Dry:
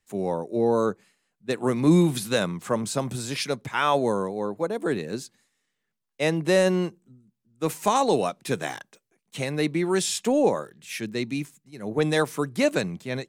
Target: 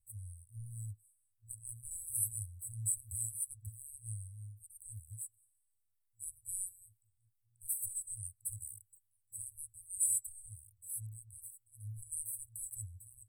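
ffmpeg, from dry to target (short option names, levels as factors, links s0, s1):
-af "afftfilt=real='re*(1-between(b*sr/4096,110,7800))':imag='im*(1-between(b*sr/4096,110,7800))':win_size=4096:overlap=0.75,volume=1.41"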